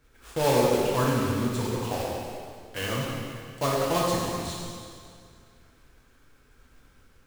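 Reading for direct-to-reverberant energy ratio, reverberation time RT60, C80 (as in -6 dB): -4.5 dB, 2.2 s, 0.5 dB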